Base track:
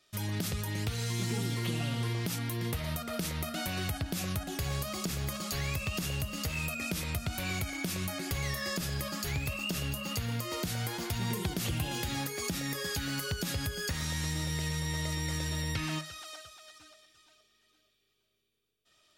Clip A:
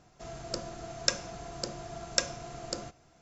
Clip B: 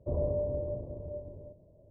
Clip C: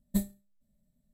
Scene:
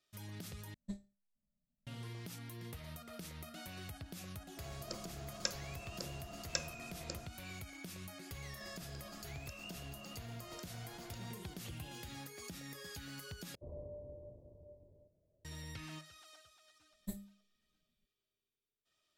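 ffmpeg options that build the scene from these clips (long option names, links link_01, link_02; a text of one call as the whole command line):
ffmpeg -i bed.wav -i cue0.wav -i cue1.wav -i cue2.wav -filter_complex "[3:a]asplit=2[link_01][link_02];[1:a]asplit=2[link_03][link_04];[0:a]volume=-14dB[link_05];[link_01]lowpass=frequency=6700:width=0.5412,lowpass=frequency=6700:width=1.3066[link_06];[link_04]acompressor=threshold=-52dB:ratio=6:attack=3.2:release=140:knee=1:detection=peak[link_07];[link_02]bandreject=frequency=50:width_type=h:width=6,bandreject=frequency=100:width_type=h:width=6,bandreject=frequency=150:width_type=h:width=6,bandreject=frequency=200:width_type=h:width=6,bandreject=frequency=250:width_type=h:width=6,bandreject=frequency=300:width_type=h:width=6[link_08];[link_05]asplit=3[link_09][link_10][link_11];[link_09]atrim=end=0.744[link_12];[link_06]atrim=end=1.13,asetpts=PTS-STARTPTS,volume=-15dB[link_13];[link_10]atrim=start=1.866:end=13.554[link_14];[2:a]atrim=end=1.9,asetpts=PTS-STARTPTS,volume=-17.5dB[link_15];[link_11]atrim=start=15.446[link_16];[link_03]atrim=end=3.21,asetpts=PTS-STARTPTS,volume=-10dB,afade=type=in:duration=0.004:curve=hsin,afade=type=out:start_time=3.206:duration=0.004:curve=hsin,adelay=192717S[link_17];[link_07]atrim=end=3.21,asetpts=PTS-STARTPTS,volume=-2dB,afade=type=in:duration=0.004:curve=hsin,afade=type=out:start_time=3.206:duration=0.004:curve=hsin,adelay=8410[link_18];[link_08]atrim=end=1.13,asetpts=PTS-STARTPTS,volume=-12dB,afade=type=in:duration=0.004:curve=hsin,afade=type=out:start_time=1.126:duration=0.004:curve=hsin,adelay=16930[link_19];[link_12][link_13]acrossfade=duration=0.004:curve1=hsin:curve2=hsin[link_20];[link_20][link_14]acrossfade=duration=0.004:curve1=hsin:curve2=hsin[link_21];[link_21][link_15]acrossfade=duration=0.004:curve1=hsin:curve2=hsin[link_22];[link_22][link_16]acrossfade=duration=0.004:curve1=hsin:curve2=hsin[link_23];[link_23][link_17][link_18][link_19]amix=inputs=4:normalize=0" out.wav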